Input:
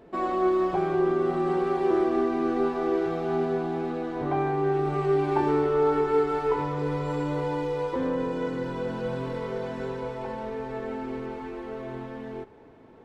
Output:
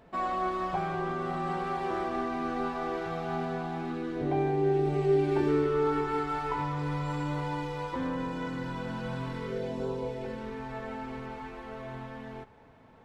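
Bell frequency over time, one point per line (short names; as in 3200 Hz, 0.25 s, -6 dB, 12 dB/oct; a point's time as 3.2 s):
bell -13 dB 0.85 oct
3.72 s 360 Hz
4.33 s 1200 Hz
5.11 s 1200 Hz
6.3 s 430 Hz
9.27 s 430 Hz
9.87 s 2000 Hz
10.79 s 360 Hz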